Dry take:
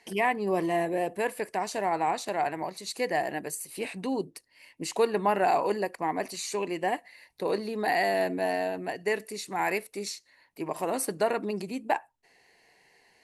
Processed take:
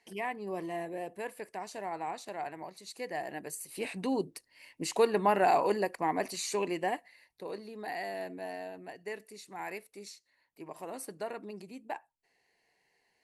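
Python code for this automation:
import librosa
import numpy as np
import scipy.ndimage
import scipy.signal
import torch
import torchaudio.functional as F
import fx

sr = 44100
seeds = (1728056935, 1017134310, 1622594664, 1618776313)

y = fx.gain(x, sr, db=fx.line((3.07, -10.0), (3.99, -1.0), (6.69, -1.0), (7.48, -12.0)))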